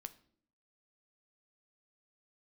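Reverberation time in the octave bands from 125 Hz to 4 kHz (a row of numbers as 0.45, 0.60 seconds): 0.75, 0.80, 0.65, 0.50, 0.45, 0.45 seconds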